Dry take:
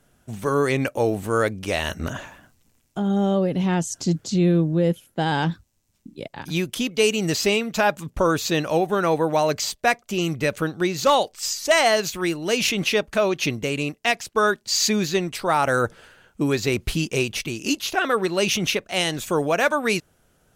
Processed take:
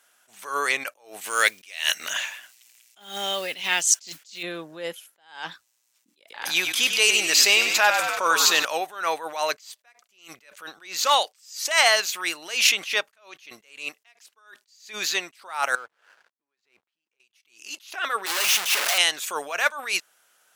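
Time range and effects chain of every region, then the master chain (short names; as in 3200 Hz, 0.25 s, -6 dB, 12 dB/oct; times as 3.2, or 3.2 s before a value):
1.21–4.43 resonant high shelf 1700 Hz +8 dB, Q 1.5 + modulation noise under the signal 29 dB
6.2–8.65 frequency-shifting echo 97 ms, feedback 62%, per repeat -46 Hz, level -10 dB + fast leveller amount 50%
15.75–17.2 LPF 2000 Hz 6 dB/oct + compressor 4:1, threshold -35 dBFS + backlash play -47.5 dBFS
18.26–18.98 infinite clipping + low shelf 290 Hz -6.5 dB
whole clip: HPF 1100 Hz 12 dB/oct; attack slew limiter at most 130 dB/s; gain +5 dB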